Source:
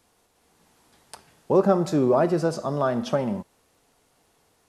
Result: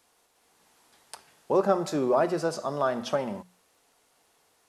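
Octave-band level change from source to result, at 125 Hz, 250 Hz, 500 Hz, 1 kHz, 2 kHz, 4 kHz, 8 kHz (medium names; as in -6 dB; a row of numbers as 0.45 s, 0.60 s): -10.0 dB, -6.5 dB, -3.5 dB, -1.5 dB, -0.5 dB, 0.0 dB, 0.0 dB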